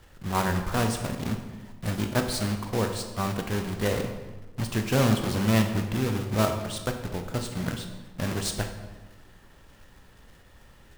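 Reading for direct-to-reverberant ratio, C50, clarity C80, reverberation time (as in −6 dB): 5.0 dB, 7.5 dB, 9.0 dB, 1.2 s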